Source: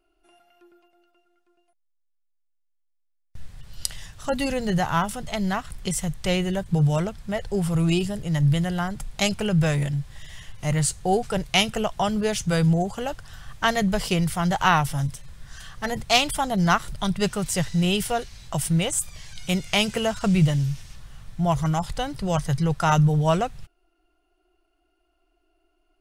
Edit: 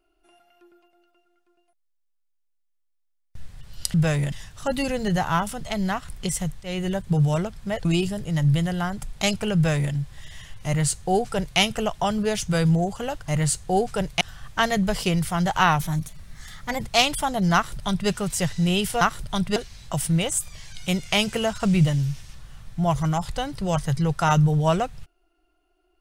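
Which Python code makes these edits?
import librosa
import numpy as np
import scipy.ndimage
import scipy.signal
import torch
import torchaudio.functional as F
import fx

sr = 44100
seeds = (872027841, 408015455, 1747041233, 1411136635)

y = fx.edit(x, sr, fx.fade_in_from(start_s=6.24, length_s=0.25, floor_db=-20.5),
    fx.cut(start_s=7.47, length_s=0.36),
    fx.duplicate(start_s=9.53, length_s=0.38, to_s=3.94),
    fx.duplicate(start_s=10.64, length_s=0.93, to_s=13.26),
    fx.speed_span(start_s=14.85, length_s=1.1, speed=1.11),
    fx.duplicate(start_s=16.7, length_s=0.55, to_s=18.17), tone=tone)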